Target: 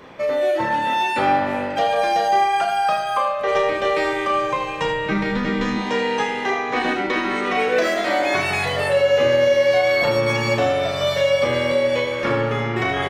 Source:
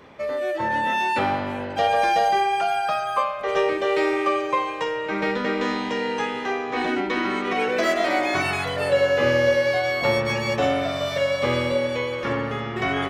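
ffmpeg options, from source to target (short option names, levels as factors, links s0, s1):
-filter_complex "[0:a]asettb=1/sr,asplit=3[s0][s1][s2];[s0]atrim=end=3.394[s3];[s1]atrim=start=3.39:end=5.78,asetpts=PTS-STARTPTS,afade=t=in:d=0.004:c=qsin,afade=t=out:st=2.386:d=0.004:c=qsin,asubboost=boost=10:cutoff=200[s4];[s2]atrim=start=5.776[s5];[s3][s4]acrossfade=d=0.004:c1=hsin:c2=qsin[s6];[s6][s5]acrossfade=d=0.004:c1=qsin:c2=hsin,alimiter=limit=0.158:level=0:latency=1:release=219,equalizer=f=87:t=o:w=1:g=-4,asplit=2[s7][s8];[s8]adelay=34,volume=0.501[s9];[s7][s9]amix=inputs=2:normalize=0,aecho=1:1:78:0.355,volume=1.68"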